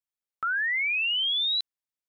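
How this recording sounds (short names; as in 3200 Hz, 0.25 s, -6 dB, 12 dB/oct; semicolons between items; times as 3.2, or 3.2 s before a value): noise floor -94 dBFS; spectral tilt +3.0 dB/oct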